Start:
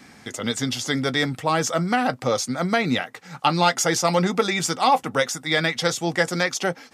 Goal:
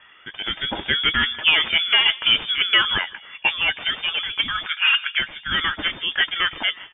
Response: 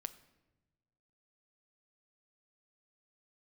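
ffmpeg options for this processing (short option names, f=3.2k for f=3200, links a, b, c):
-filter_complex "[0:a]aemphasis=mode=production:type=bsi,asplit=2[a][b];[b]adelay=157,lowpass=f=2.1k:p=1,volume=-19dB,asplit=2[c][d];[d]adelay=157,lowpass=f=2.1k:p=1,volume=0.55,asplit=2[e][f];[f]adelay=157,lowpass=f=2.1k:p=1,volume=0.55,asplit=2[g][h];[h]adelay=157,lowpass=f=2.1k:p=1,volume=0.55,asplit=2[i][j];[j]adelay=157,lowpass=f=2.1k:p=1,volume=0.55[k];[a][c][e][g][i][k]amix=inputs=6:normalize=0,asplit=2[l][m];[m]aeval=exprs='(mod(3.35*val(0)+1,2)-1)/3.35':c=same,volume=-6.5dB[n];[l][n]amix=inputs=2:normalize=0,flanger=delay=1.1:depth=5.7:regen=55:speed=0.29:shape=sinusoidal,aeval=exprs='0.668*(cos(1*acos(clip(val(0)/0.668,-1,1)))-cos(1*PI/2))+0.266*(cos(2*acos(clip(val(0)/0.668,-1,1)))-cos(2*PI/2))+0.0376*(cos(4*acos(clip(val(0)/0.668,-1,1)))-cos(4*PI/2))':c=same,dynaudnorm=f=270:g=5:m=11.5dB,lowpass=f=3.1k:t=q:w=0.5098,lowpass=f=3.1k:t=q:w=0.6013,lowpass=f=3.1k:t=q:w=0.9,lowpass=f=3.1k:t=q:w=2.563,afreqshift=-3600,asettb=1/sr,asplit=3[o][p][q];[o]atrim=end=4.664[r];[p]atrim=start=4.66:end=5.19,asetpts=PTS-STARTPTS,afade=t=in:d=0.004:c=qsin,afade=t=out:st=0.526:d=0.004:c=qsin,highpass=f=1.5k:t=q:w=5.6[s];[q]atrim=start=5.186[t];[r][s]acrossfade=d=0.004:c1=hsin:c2=qsin[u];[u][t]acrossfade=d=0.004:c1=qsin:c2=hsin"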